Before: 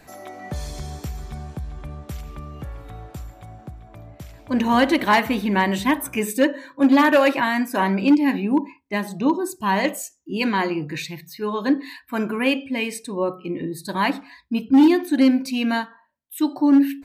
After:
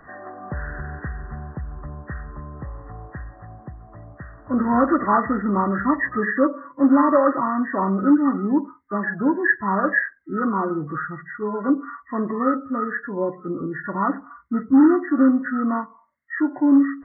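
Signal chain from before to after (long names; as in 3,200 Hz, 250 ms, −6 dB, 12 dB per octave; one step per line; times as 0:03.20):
hearing-aid frequency compression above 1,000 Hz 4 to 1
dynamic equaliser 870 Hz, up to −4 dB, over −33 dBFS, Q 1.9
0:09.03–0:09.99: hollow resonant body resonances 1,700 Hz, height 14 dB, ringing for 25 ms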